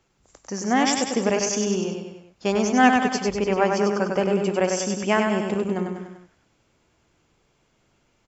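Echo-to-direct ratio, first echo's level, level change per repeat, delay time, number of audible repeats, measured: −3.0 dB, −4.5 dB, −5.0 dB, 98 ms, 4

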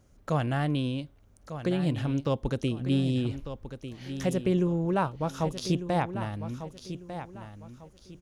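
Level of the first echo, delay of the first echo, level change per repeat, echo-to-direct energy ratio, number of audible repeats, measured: −11.0 dB, 1,198 ms, −10.5 dB, −10.5 dB, 3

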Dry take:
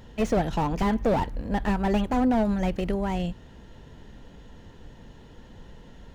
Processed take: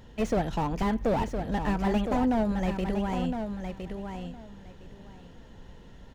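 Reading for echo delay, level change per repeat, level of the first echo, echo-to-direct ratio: 1,012 ms, −15.0 dB, −7.0 dB, −7.0 dB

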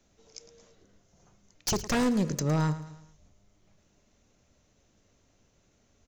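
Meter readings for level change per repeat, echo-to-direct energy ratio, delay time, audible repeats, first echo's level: −6.5 dB, −14.0 dB, 109 ms, 4, −15.0 dB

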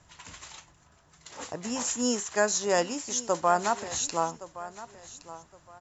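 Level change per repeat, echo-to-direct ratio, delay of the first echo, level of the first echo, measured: −12.0 dB, −16.0 dB, 1,117 ms, −16.0 dB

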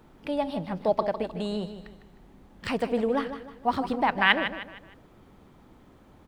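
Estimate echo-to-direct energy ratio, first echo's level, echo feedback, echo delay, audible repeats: −10.0 dB, −10.5 dB, 38%, 154 ms, 3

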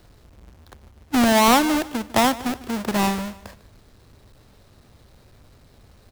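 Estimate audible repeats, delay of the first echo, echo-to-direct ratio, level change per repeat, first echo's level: 2, 150 ms, −18.0 dB, −8.0 dB, −18.5 dB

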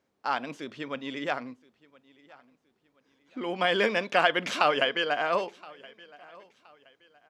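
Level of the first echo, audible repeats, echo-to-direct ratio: −23.5 dB, 2, −23.0 dB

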